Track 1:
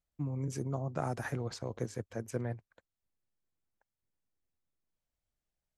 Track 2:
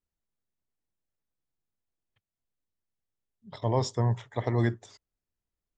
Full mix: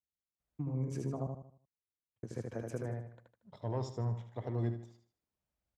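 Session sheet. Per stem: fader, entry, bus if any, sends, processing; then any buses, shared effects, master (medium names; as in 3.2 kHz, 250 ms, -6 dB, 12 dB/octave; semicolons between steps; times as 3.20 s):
+1.5 dB, 0.40 s, muted 1.27–2.23 s, no send, echo send -3.5 dB, compression, threshold -36 dBFS, peak gain reduction 7.5 dB
-12.0 dB, 0.00 s, no send, echo send -10 dB, peaking EQ 1.7 kHz -7 dB 0.81 oct; waveshaping leveller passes 1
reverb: none
echo: feedback delay 77 ms, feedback 38%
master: high-pass 49 Hz; treble shelf 2.2 kHz -9 dB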